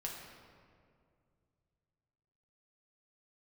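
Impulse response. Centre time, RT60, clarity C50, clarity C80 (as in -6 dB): 74 ms, 2.3 s, 2.5 dB, 4.0 dB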